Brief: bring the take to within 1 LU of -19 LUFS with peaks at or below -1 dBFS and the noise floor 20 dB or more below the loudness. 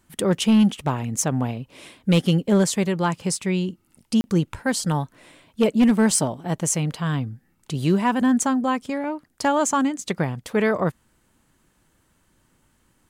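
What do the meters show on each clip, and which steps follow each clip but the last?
clipped 0.5%; flat tops at -11.5 dBFS; dropouts 1; longest dropout 30 ms; loudness -22.5 LUFS; peak -11.5 dBFS; loudness target -19.0 LUFS
-> clip repair -11.5 dBFS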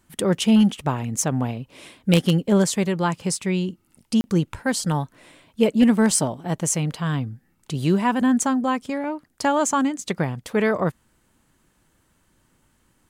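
clipped 0.0%; dropouts 1; longest dropout 30 ms
-> interpolate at 4.21, 30 ms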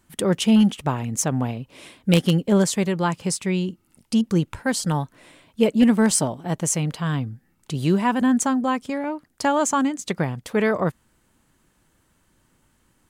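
dropouts 0; loudness -22.0 LUFS; peak -2.5 dBFS; loudness target -19.0 LUFS
-> gain +3 dB; limiter -1 dBFS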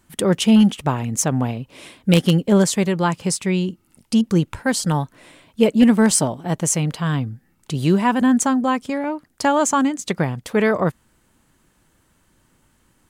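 loudness -19.0 LUFS; peak -1.0 dBFS; noise floor -62 dBFS

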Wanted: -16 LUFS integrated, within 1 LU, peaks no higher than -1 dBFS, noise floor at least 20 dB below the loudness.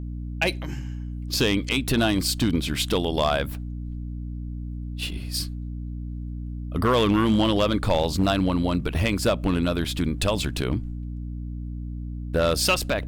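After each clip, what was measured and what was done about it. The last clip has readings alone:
clipped 0.5%; flat tops at -13.5 dBFS; hum 60 Hz; harmonics up to 300 Hz; hum level -30 dBFS; loudness -25.5 LUFS; peak -13.5 dBFS; loudness target -16.0 LUFS
-> clip repair -13.5 dBFS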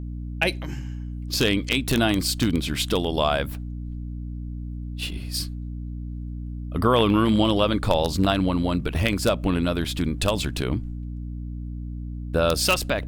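clipped 0.0%; hum 60 Hz; harmonics up to 300 Hz; hum level -30 dBFS
-> de-hum 60 Hz, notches 5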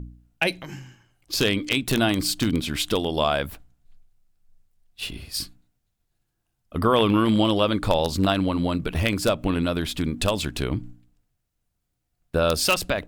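hum none; loudness -23.5 LUFS; peak -4.0 dBFS; loudness target -16.0 LUFS
-> gain +7.5 dB; limiter -1 dBFS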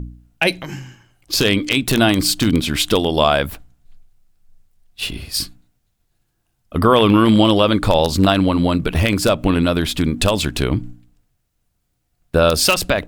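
loudness -16.5 LUFS; peak -1.0 dBFS; noise floor -69 dBFS

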